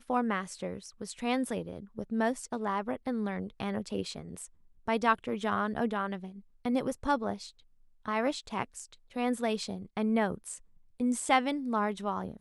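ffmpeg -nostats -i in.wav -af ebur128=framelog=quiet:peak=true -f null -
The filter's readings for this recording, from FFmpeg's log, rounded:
Integrated loudness:
  I:         -32.7 LUFS
  Threshold: -43.1 LUFS
Loudness range:
  LRA:         2.9 LU
  Threshold: -53.4 LUFS
  LRA low:   -34.6 LUFS
  LRA high:  -31.7 LUFS
True peak:
  Peak:      -11.4 dBFS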